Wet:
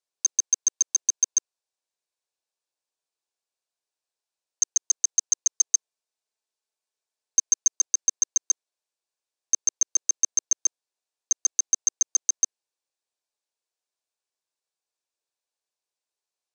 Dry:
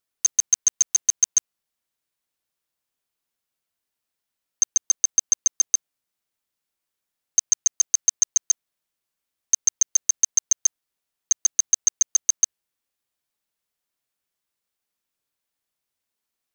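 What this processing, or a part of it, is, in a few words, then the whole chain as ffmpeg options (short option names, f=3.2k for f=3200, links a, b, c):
phone speaker on a table: -filter_complex "[0:a]highpass=f=370:w=0.5412,highpass=f=370:w=1.3066,equalizer=f=1.3k:t=q:w=4:g=-7,equalizer=f=2k:t=q:w=4:g=-8,equalizer=f=3.1k:t=q:w=4:g=-5,lowpass=f=8.8k:w=0.5412,lowpass=f=8.8k:w=1.3066,asettb=1/sr,asplit=3[a][b][c];[a]atrim=end=5.514[d];[b]atrim=start=5.51:end=7.77,asetpts=PTS-STARTPTS,afade=t=in:d=0.004:c=qsin,afade=t=out:st=2.256:d=0.004:c=qsin,aecho=1:1:4.6:0.39,atrim=end_sample=99666[e];[c]atrim=start=7.766[f];[d][e]acrossfade=d=0.004:c1=hsin:c2=qsin[g];[g][f]acrossfade=d=0.004:c1=qsin:c2=hsin,volume=-2.5dB"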